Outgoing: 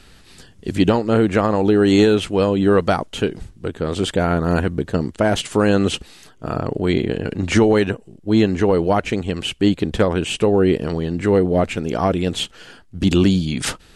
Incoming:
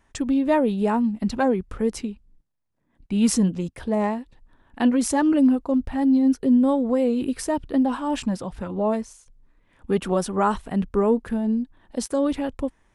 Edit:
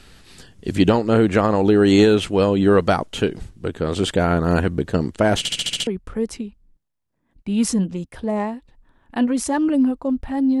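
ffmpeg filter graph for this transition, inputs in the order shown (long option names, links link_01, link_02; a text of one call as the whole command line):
ffmpeg -i cue0.wav -i cue1.wav -filter_complex "[0:a]apad=whole_dur=10.6,atrim=end=10.6,asplit=7[link_01][link_02][link_03][link_04][link_05][link_06][link_07];[link_01]atrim=end=5.452[link_08];[link_02]atrim=start=5.378:end=5.452[link_09];[link_03]atrim=start=5.378:end=5.452[link_10];[link_04]atrim=start=5.378:end=5.452[link_11];[link_05]atrim=start=5.378:end=5.452[link_12];[link_06]atrim=start=5.378:end=5.452[link_13];[link_07]atrim=start=5.378:end=5.452[link_14];[1:a]atrim=start=1.508:end=6.24[link_15];[link_08][link_09]acrossfade=duration=0.004:curve1=hsin:curve2=hsin[link_16];[link_16][link_10]acrossfade=duration=0.004:curve1=hsin:curve2=hsin[link_17];[link_17][link_11]acrossfade=duration=0.004:curve1=hsin:curve2=hsin[link_18];[link_18][link_12]acrossfade=duration=0.004:curve1=hsin:curve2=hsin[link_19];[link_19][link_13]acrossfade=duration=0.004:curve1=hsin:curve2=hsin[link_20];[link_20][link_14]acrossfade=duration=0.004:curve1=hsin:curve2=hsin[link_21];[link_21][link_15]acrossfade=duration=0.004:curve1=hsin:curve2=hsin" out.wav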